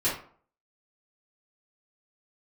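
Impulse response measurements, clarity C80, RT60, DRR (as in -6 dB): 10.5 dB, 0.50 s, -12.0 dB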